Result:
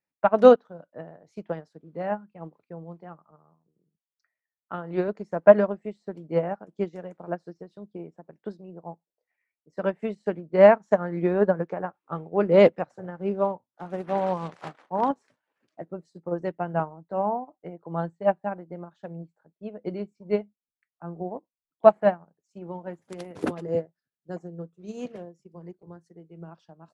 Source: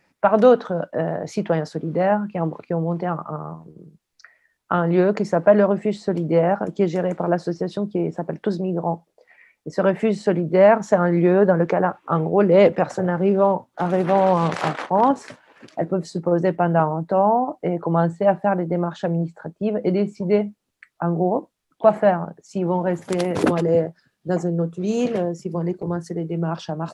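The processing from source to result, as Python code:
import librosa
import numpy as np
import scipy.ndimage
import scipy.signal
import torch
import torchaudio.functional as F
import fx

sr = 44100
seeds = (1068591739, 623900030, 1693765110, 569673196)

y = fx.highpass(x, sr, hz=120.0, slope=6, at=(3.31, 5.08))
y = fx.upward_expand(y, sr, threshold_db=-29.0, expansion=2.5)
y = F.gain(torch.from_numpy(y), 2.0).numpy()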